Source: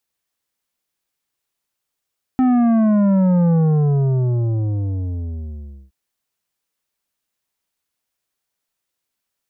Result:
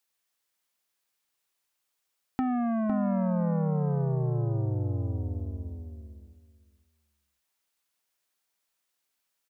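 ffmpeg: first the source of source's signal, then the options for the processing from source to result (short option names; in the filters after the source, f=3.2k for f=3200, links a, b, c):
-f lavfi -i "aevalsrc='0.224*clip((3.52-t)/2.39,0,1)*tanh(2.99*sin(2*PI*260*3.52/log(65/260)*(exp(log(65/260)*t/3.52)-1)))/tanh(2.99)':d=3.52:s=44100"
-filter_complex "[0:a]lowshelf=f=410:g=-9,acompressor=threshold=-28dB:ratio=3,asplit=2[a][b];[b]adelay=506,lowpass=f=1.6k:p=1,volume=-5.5dB,asplit=2[c][d];[d]adelay=506,lowpass=f=1.6k:p=1,volume=0.17,asplit=2[e][f];[f]adelay=506,lowpass=f=1.6k:p=1,volume=0.17[g];[a][c][e][g]amix=inputs=4:normalize=0"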